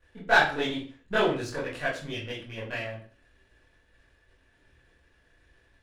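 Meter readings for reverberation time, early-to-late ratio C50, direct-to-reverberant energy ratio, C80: 0.40 s, 6.0 dB, −9.5 dB, 10.5 dB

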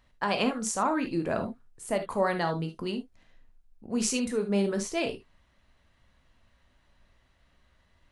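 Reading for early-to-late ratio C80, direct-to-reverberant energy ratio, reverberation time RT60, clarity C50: 25.5 dB, 6.0 dB, non-exponential decay, 10.5 dB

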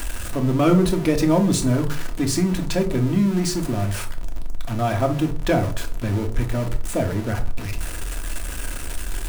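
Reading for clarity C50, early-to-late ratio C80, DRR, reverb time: 13.5 dB, 18.5 dB, 3.0 dB, non-exponential decay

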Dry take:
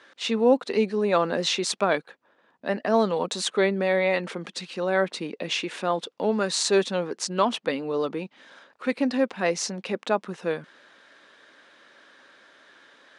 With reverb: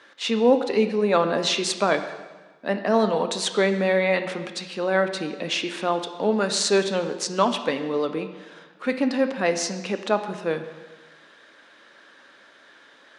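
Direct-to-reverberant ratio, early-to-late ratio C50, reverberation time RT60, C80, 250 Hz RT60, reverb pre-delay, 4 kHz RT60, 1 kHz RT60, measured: 8.0 dB, 10.0 dB, 1.3 s, 11.5 dB, 1.3 s, 5 ms, 1.2 s, 1.3 s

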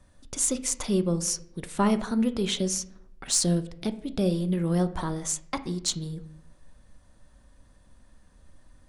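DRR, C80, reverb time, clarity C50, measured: 10.0 dB, 18.5 dB, 0.75 s, 14.5 dB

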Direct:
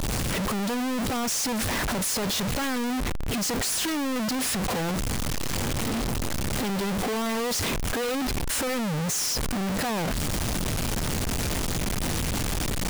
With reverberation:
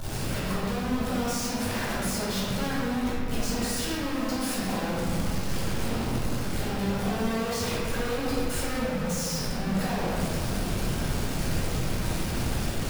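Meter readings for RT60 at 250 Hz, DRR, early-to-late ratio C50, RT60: 3.5 s, −8.5 dB, −2.5 dB, 2.8 s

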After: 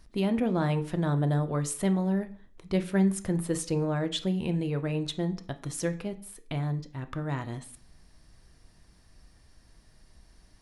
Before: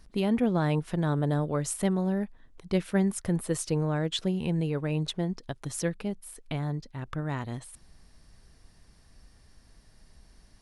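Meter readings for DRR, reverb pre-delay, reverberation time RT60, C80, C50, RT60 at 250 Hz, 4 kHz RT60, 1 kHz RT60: 8.5 dB, 3 ms, 0.45 s, 20.0 dB, 15.5 dB, 0.50 s, 0.40 s, 0.45 s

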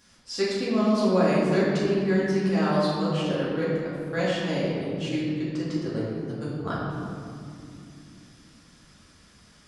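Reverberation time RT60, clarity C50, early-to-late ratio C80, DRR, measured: 2.6 s, −1.5 dB, 0.5 dB, −9.0 dB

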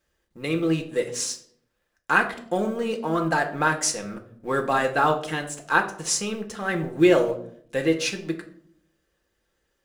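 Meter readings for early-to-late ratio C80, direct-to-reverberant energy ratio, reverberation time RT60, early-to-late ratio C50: 14.5 dB, 2.5 dB, 0.60 s, 11.0 dB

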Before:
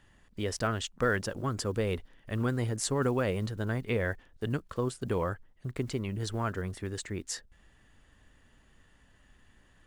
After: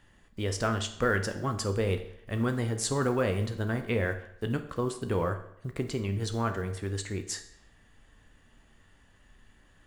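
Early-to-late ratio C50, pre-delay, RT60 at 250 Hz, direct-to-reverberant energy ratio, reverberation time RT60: 11.0 dB, 14 ms, 0.70 s, 6.5 dB, 0.70 s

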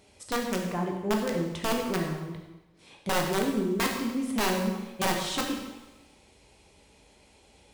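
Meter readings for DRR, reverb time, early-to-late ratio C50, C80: 0.5 dB, 1.1 s, 4.0 dB, 6.0 dB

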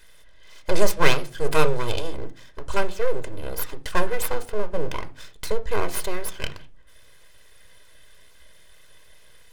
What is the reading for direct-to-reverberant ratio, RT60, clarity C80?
9.0 dB, 0.40 s, 23.5 dB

